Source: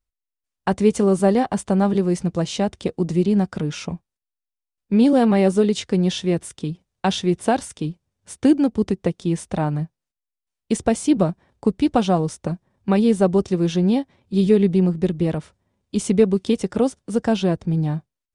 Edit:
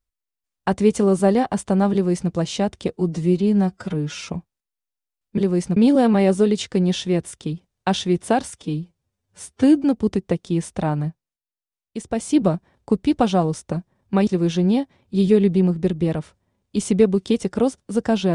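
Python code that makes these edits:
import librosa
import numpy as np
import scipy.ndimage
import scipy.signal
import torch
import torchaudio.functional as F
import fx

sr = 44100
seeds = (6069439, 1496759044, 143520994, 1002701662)

y = fx.edit(x, sr, fx.duplicate(start_s=1.92, length_s=0.39, to_s=4.94),
    fx.stretch_span(start_s=2.97, length_s=0.87, factor=1.5),
    fx.stretch_span(start_s=7.74, length_s=0.85, factor=1.5),
    fx.fade_down_up(start_s=9.81, length_s=1.29, db=-9.0, fade_s=0.29),
    fx.cut(start_s=13.02, length_s=0.44), tone=tone)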